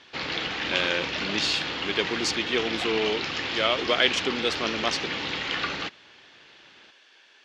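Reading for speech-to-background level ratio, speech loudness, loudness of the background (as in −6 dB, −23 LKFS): 2.0 dB, −27.0 LKFS, −29.0 LKFS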